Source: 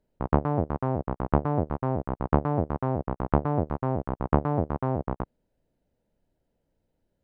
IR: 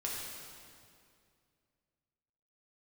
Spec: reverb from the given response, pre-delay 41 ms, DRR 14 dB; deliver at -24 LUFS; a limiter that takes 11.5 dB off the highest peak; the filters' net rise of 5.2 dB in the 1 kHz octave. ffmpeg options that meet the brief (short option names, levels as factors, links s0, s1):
-filter_complex "[0:a]equalizer=f=1000:t=o:g=6.5,alimiter=limit=0.251:level=0:latency=1,asplit=2[s0][s1];[1:a]atrim=start_sample=2205,adelay=41[s2];[s1][s2]afir=irnorm=-1:irlink=0,volume=0.141[s3];[s0][s3]amix=inputs=2:normalize=0,volume=1.58"